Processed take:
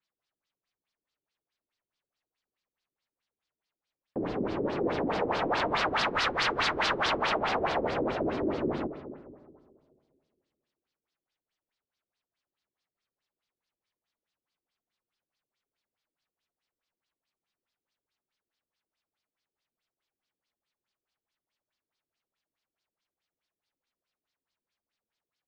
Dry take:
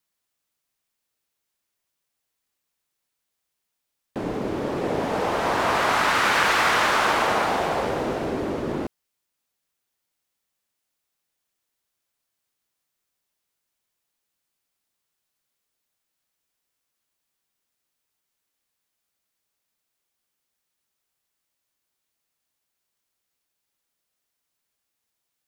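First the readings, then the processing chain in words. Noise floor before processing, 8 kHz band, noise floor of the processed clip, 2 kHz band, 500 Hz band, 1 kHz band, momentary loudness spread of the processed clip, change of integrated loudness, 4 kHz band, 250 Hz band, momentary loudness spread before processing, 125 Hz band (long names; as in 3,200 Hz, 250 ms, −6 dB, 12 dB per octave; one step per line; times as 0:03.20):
−81 dBFS, −13.0 dB, below −85 dBFS, −8.0 dB, −5.0 dB, −7.5 dB, 9 LU, −6.5 dB, −4.5 dB, −3.5 dB, 11 LU, −5.5 dB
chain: comb and all-pass reverb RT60 2 s, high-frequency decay 0.4×, pre-delay 70 ms, DRR 10.5 dB
wave folding −18.5 dBFS
auto-filter low-pass sine 4.7 Hz 330–4,900 Hz
level −6 dB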